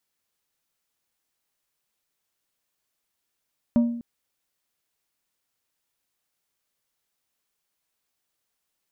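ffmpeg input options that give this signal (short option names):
-f lavfi -i "aevalsrc='0.211*pow(10,-3*t/0.72)*sin(2*PI*236*t)+0.0531*pow(10,-3*t/0.379)*sin(2*PI*590*t)+0.0133*pow(10,-3*t/0.273)*sin(2*PI*944*t)+0.00335*pow(10,-3*t/0.233)*sin(2*PI*1180*t)+0.000841*pow(10,-3*t/0.194)*sin(2*PI*1534*t)':d=0.25:s=44100"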